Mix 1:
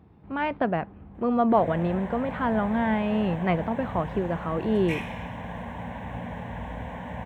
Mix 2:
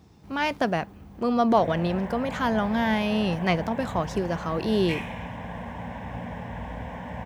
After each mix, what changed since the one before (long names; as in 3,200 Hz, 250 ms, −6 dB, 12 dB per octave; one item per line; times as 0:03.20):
speech: remove Gaussian smoothing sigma 3.4 samples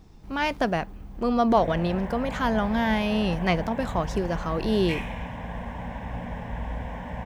master: remove high-pass filter 68 Hz 24 dB per octave